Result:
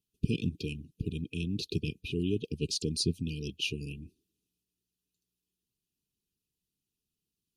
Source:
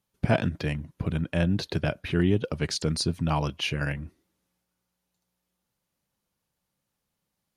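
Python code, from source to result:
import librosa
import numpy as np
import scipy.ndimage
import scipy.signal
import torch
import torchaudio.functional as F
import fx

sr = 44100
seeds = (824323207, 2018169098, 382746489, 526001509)

y = fx.hpss(x, sr, part='harmonic', gain_db=-9)
y = fx.brickwall_bandstop(y, sr, low_hz=470.0, high_hz=2400.0)
y = y * 10.0 ** (-2.0 / 20.0)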